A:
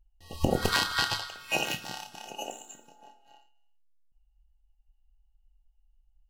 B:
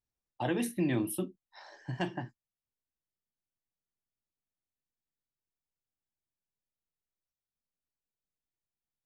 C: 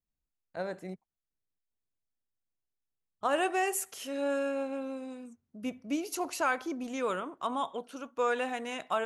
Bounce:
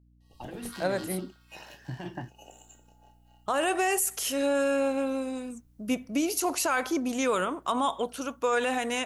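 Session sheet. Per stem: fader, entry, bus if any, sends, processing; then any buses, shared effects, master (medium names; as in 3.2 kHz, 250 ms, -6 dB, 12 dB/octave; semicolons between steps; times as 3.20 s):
2.32 s -19.5 dB -> 2.61 s -7.5 dB, 0.00 s, no bus, no send, none
-12.5 dB, 0.00 s, bus A, no send, compressor with a negative ratio -35 dBFS, ratio -1
-2.5 dB, 0.25 s, bus A, no send, treble shelf 5.5 kHz +9.5 dB
bus A: 0.0 dB, level rider gain up to 10 dB; peak limiter -17.5 dBFS, peak gain reduction 10.5 dB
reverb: none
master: hum 60 Hz, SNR 31 dB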